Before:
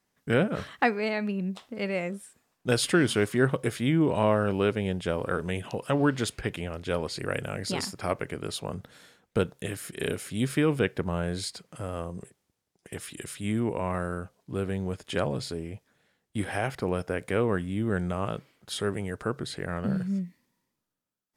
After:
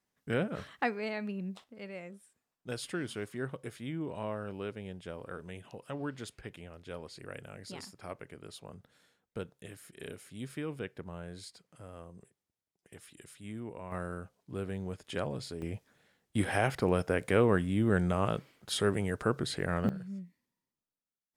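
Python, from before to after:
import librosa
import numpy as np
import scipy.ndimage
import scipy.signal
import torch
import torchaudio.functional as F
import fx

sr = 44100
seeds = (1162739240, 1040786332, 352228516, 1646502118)

y = fx.gain(x, sr, db=fx.steps((0.0, -7.5), (1.64, -14.0), (13.92, -7.0), (15.62, 0.5), (19.89, -12.0)))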